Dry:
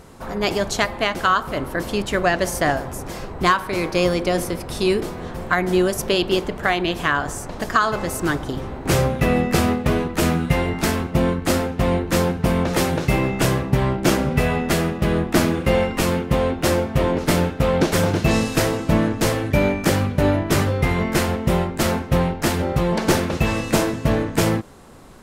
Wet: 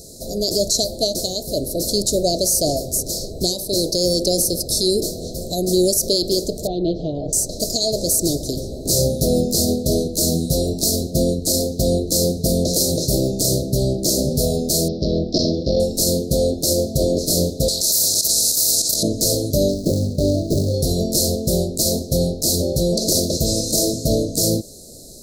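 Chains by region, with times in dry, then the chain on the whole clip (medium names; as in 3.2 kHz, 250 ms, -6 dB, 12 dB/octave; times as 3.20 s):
6.67–7.33 s: low-pass 2.7 kHz 24 dB/octave + comb 6.4 ms, depth 44%
14.88–15.80 s: Chebyshev low-pass 5.4 kHz, order 5 + transformer saturation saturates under 300 Hz
17.68–19.03 s: bass shelf 150 Hz +4 dB + level held to a coarse grid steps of 13 dB + spectrum-flattening compressor 4:1
19.68–20.74 s: median filter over 41 samples + treble shelf 9.2 kHz -5 dB
whole clip: Chebyshev band-stop 650–4100 Hz, order 5; tilt shelf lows -8 dB, about 1.1 kHz; peak limiter -16.5 dBFS; trim +9 dB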